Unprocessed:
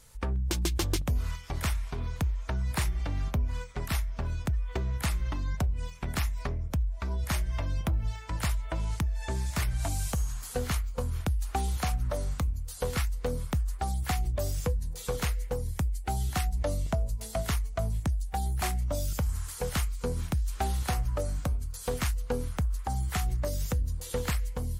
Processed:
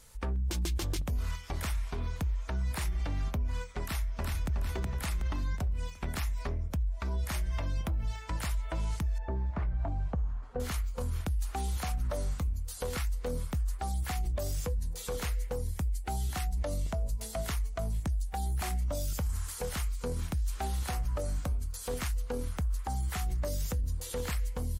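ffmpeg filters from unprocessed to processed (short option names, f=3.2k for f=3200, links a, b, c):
-filter_complex "[0:a]asplit=2[a][b];[b]afade=t=in:st=3.82:d=0.01,afade=t=out:st=4.56:d=0.01,aecho=0:1:370|740|1110|1480|1850:0.707946|0.283178|0.113271|0.0453085|0.0181234[c];[a][c]amix=inputs=2:normalize=0,asettb=1/sr,asplit=3[d][e][f];[d]atrim=end=9.184[g];[e]atrim=start=9.18:end=10.6,asetpts=PTS-STARTPTS,afade=t=in:d=0.004:c=qsin,afade=t=out:st=1.416:d=0.004:c=qsin,lowpass=1k[h];[f]atrim=start=10.596[i];[g][h]acrossfade=d=0.004:c1=hsin:c2=qsin[j];[j][i]acrossfade=d=0.004:c1=qsin:c2=hsin,equalizer=f=120:t=o:w=0.43:g=-6.5,alimiter=level_in=1.5dB:limit=-24dB:level=0:latency=1:release=16,volume=-1.5dB"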